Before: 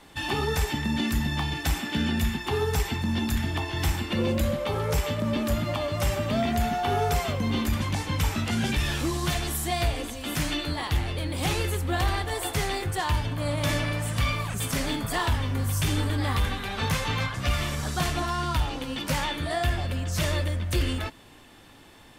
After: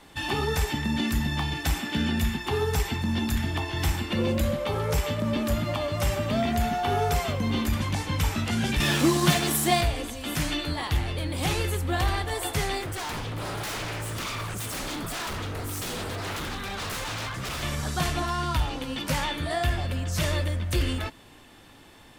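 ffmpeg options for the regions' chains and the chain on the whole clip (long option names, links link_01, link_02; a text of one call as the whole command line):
ffmpeg -i in.wav -filter_complex "[0:a]asettb=1/sr,asplit=3[link_01][link_02][link_03];[link_01]atrim=end=8.804[link_04];[link_02]atrim=start=8.8:end=9.81,asetpts=PTS-STARTPTS,afade=type=in:duration=0.004:curve=qsin,afade=type=out:start_time=1.006:duration=0.004:curve=qsin,highpass=frequency=180:width_type=q:width=1.6,acontrast=81,aeval=exprs='sgn(val(0))*max(abs(val(0))-0.0178,0)':channel_layout=same[link_05];[link_03]atrim=start=9.806[link_06];[link_04][link_05]acrossfade=duration=0.004:curve1=hsin:curve2=qsin[link_07];[link_07][link_06]acrossfade=duration=0.004:curve1=qsin:curve2=hsin,asettb=1/sr,asplit=3[link_08][link_09][link_10];[link_08]atrim=end=12.824[link_11];[link_09]atrim=start=12.82:end=17.63,asetpts=PTS-STARTPTS,afade=type=in:duration=0.004:curve=qsin,afade=type=out:start_time=4.806:duration=0.004:curve=qsin,aeval=exprs='0.0398*(abs(mod(val(0)/0.0398+3,4)-2)-1)':channel_layout=same,equalizer=frequency=1300:width_type=o:width=0.29:gain=3[link_12];[link_10]atrim=start=17.626[link_13];[link_11][link_12]acrossfade=duration=0.004:curve1=hsin:curve2=qsin[link_14];[link_14][link_13]acrossfade=duration=0.004:curve1=qsin:curve2=hsin" out.wav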